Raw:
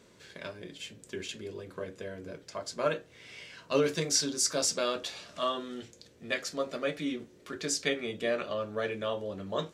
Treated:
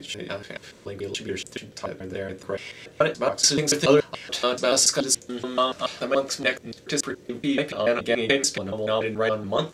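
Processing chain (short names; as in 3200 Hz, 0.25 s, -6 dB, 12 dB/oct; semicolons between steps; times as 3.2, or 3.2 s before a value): slices in reverse order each 0.143 s, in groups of 6; gain +9 dB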